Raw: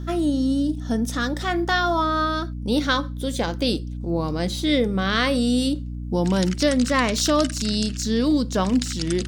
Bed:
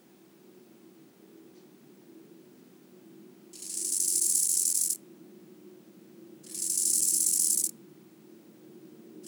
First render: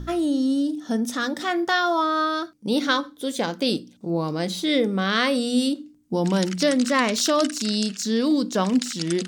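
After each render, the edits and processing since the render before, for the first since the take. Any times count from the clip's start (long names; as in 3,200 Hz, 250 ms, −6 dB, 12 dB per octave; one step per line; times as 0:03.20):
hum removal 60 Hz, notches 5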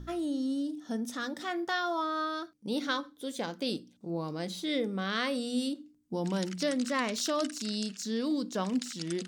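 level −10 dB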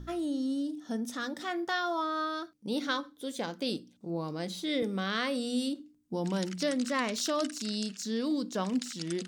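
0:04.82–0:05.80: multiband upward and downward compressor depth 40%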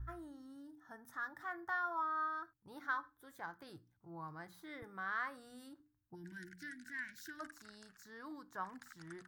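0:06.15–0:07.40: gain on a spectral selection 380–1,400 Hz −27 dB
drawn EQ curve 120 Hz 0 dB, 220 Hz −29 dB, 330 Hz −17 dB, 520 Hz −24 dB, 870 Hz −5 dB, 1,700 Hz −3 dB, 2,700 Hz −26 dB, 4,100 Hz −25 dB, 8,100 Hz −22 dB, 15,000 Hz −6 dB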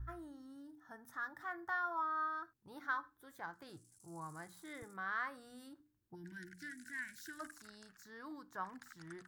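mix in bed −39 dB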